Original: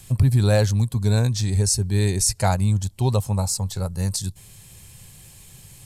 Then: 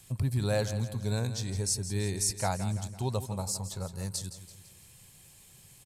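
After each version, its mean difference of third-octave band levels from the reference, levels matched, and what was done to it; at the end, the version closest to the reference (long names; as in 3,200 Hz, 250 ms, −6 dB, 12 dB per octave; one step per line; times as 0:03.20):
4.5 dB: low-shelf EQ 94 Hz −10 dB
repeating echo 167 ms, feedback 48%, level −12 dB
level −8.5 dB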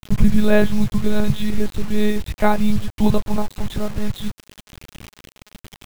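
8.5 dB: one-pitch LPC vocoder at 8 kHz 210 Hz
bit reduction 7 bits
level +6 dB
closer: first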